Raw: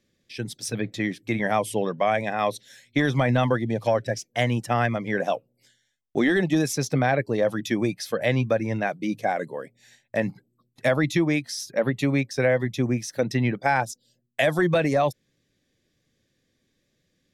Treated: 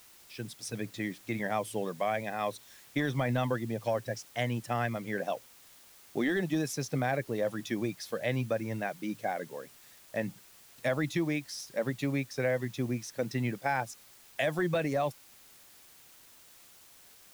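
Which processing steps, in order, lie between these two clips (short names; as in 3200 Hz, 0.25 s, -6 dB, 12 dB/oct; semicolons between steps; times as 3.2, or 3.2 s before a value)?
requantised 8-bit, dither triangular; gain -8.5 dB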